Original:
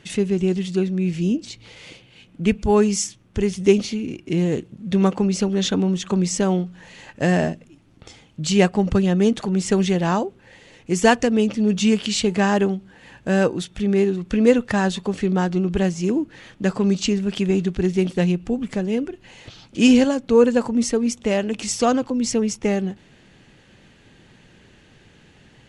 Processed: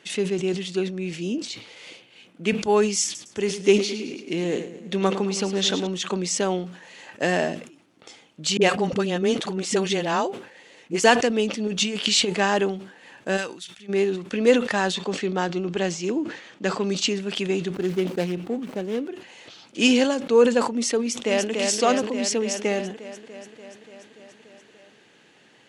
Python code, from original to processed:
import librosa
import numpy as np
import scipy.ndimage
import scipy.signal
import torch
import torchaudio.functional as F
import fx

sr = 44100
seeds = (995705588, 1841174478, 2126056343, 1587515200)

y = fx.echo_feedback(x, sr, ms=108, feedback_pct=57, wet_db=-12.0, at=(3.04, 5.87))
y = fx.dispersion(y, sr, late='highs', ms=44.0, hz=350.0, at=(8.57, 11.04))
y = fx.over_compress(y, sr, threshold_db=-19.0, ratio=-0.5, at=(11.67, 12.34))
y = fx.tone_stack(y, sr, knobs='5-5-5', at=(13.36, 13.88), fade=0.02)
y = fx.lowpass(y, sr, hz=8300.0, slope=24, at=(14.94, 16.83))
y = fx.median_filter(y, sr, points=25, at=(17.74, 19.08))
y = fx.echo_throw(y, sr, start_s=20.99, length_s=0.52, ms=290, feedback_pct=75, wet_db=-3.5)
y = scipy.signal.sosfilt(scipy.signal.butter(2, 310.0, 'highpass', fs=sr, output='sos'), y)
y = fx.dynamic_eq(y, sr, hz=3500.0, q=1.0, threshold_db=-42.0, ratio=4.0, max_db=4)
y = fx.sustainer(y, sr, db_per_s=100.0)
y = F.gain(torch.from_numpy(y), -1.0).numpy()